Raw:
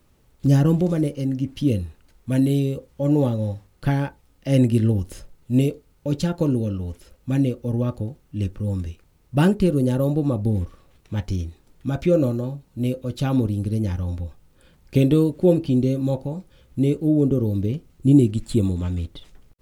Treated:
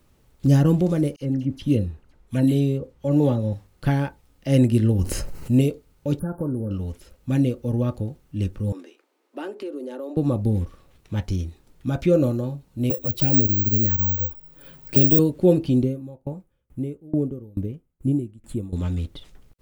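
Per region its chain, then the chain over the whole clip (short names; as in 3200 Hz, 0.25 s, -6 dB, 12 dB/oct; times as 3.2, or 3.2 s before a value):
1.16–3.53 high shelf 10000 Hz -3.5 dB + dispersion lows, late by 49 ms, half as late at 2400 Hz + mismatched tape noise reduction decoder only
4.99–5.61 notch 3500 Hz, Q 5.1 + fast leveller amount 50%
6.19–6.71 brick-wall FIR band-stop 1700–9000 Hz + compressor 2:1, threshold -26 dBFS
8.72–10.17 steep high-pass 280 Hz 48 dB/oct + compressor 2.5:1, threshold -33 dBFS + high shelf 4700 Hz -11 dB
12.9–15.19 envelope flanger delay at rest 8.3 ms, full sweep at -17 dBFS + careless resampling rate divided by 2×, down filtered, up zero stuff + three-band squash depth 40%
15.83–18.73 bell 4500 Hz -13 dB 1.2 oct + short-mantissa float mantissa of 8-bit + dB-ramp tremolo decaying 2.3 Hz, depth 27 dB
whole clip: dry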